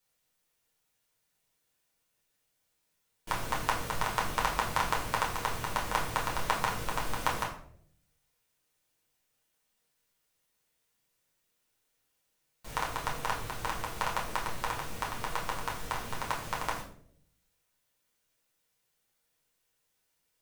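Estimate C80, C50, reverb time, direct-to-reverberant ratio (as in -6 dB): 11.0 dB, 7.5 dB, 0.65 s, -4.5 dB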